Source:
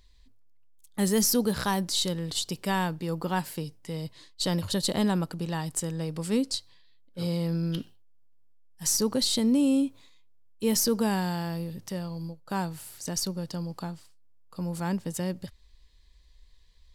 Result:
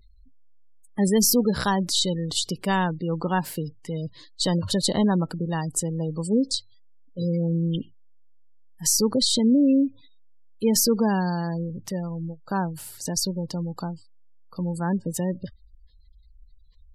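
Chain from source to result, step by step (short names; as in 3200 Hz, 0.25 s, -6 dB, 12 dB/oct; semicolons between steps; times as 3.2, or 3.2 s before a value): spectral gate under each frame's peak -25 dB strong; gain +4.5 dB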